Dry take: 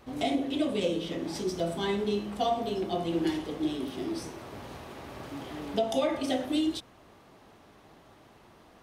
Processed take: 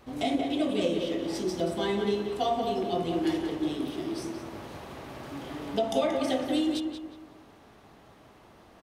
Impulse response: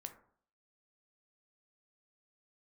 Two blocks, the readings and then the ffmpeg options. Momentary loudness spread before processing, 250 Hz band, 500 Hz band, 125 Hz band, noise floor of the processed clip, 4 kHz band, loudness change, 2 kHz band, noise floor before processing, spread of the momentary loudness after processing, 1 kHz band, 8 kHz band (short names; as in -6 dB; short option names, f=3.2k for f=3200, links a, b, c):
14 LU, +1.5 dB, +1.5 dB, 0.0 dB, -55 dBFS, +0.5 dB, +1.5 dB, +1.0 dB, -57 dBFS, 14 LU, +1.5 dB, 0.0 dB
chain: -filter_complex "[0:a]asplit=2[a][b];[b]adelay=181,lowpass=f=2.7k:p=1,volume=-4.5dB,asplit=2[c][d];[d]adelay=181,lowpass=f=2.7k:p=1,volume=0.4,asplit=2[e][f];[f]adelay=181,lowpass=f=2.7k:p=1,volume=0.4,asplit=2[g][h];[h]adelay=181,lowpass=f=2.7k:p=1,volume=0.4,asplit=2[i][j];[j]adelay=181,lowpass=f=2.7k:p=1,volume=0.4[k];[a][c][e][g][i][k]amix=inputs=6:normalize=0"